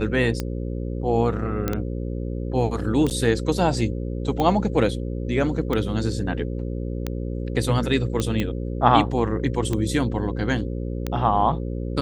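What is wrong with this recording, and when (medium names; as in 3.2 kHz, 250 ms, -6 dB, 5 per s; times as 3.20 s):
buzz 60 Hz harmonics 9 -28 dBFS
tick 45 rpm -12 dBFS
1.68 s: pop -10 dBFS
3.10–3.11 s: dropout 8.8 ms
8.20 s: pop -11 dBFS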